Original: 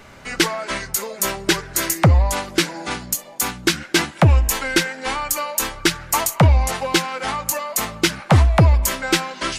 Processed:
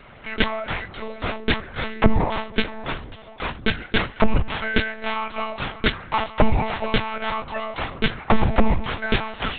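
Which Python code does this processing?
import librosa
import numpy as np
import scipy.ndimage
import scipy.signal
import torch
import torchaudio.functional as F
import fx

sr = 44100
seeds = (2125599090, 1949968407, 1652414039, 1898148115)

y = scipy.signal.sosfilt(scipy.signal.butter(2, 67.0, 'highpass', fs=sr, output='sos'), x)
y = fx.lpc_monotone(y, sr, seeds[0], pitch_hz=220.0, order=10)
y = y * 10.0 ** (-1.0 / 20.0)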